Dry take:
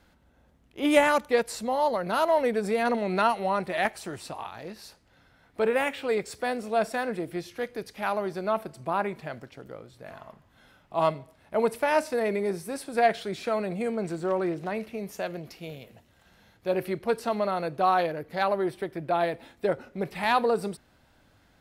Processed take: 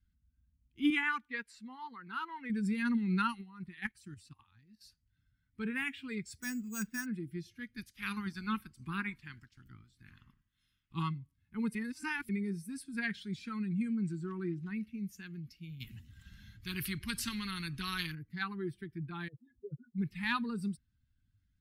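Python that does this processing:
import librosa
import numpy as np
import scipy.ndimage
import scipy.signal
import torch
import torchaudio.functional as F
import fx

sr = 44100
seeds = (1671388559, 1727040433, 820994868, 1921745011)

y = fx.bass_treble(x, sr, bass_db=-14, treble_db=-12, at=(0.9, 2.5))
y = fx.level_steps(y, sr, step_db=12, at=(3.41, 4.81))
y = fx.resample_bad(y, sr, factor=6, down='filtered', up='hold', at=(6.4, 7.06))
y = fx.spec_clip(y, sr, under_db=16, at=(7.76, 11.01), fade=0.02)
y = fx.spectral_comp(y, sr, ratio=2.0, at=(15.8, 18.15))
y = fx.spec_expand(y, sr, power=3.6, at=(19.28, 19.98))
y = fx.edit(y, sr, fx.reverse_span(start_s=11.75, length_s=0.54), tone=tone)
y = fx.bin_expand(y, sr, power=1.5)
y = scipy.signal.sosfilt(scipy.signal.cheby1(2, 1.0, [240.0, 1500.0], 'bandstop', fs=sr, output='sos'), y)
y = fx.tilt_shelf(y, sr, db=3.0, hz=680.0)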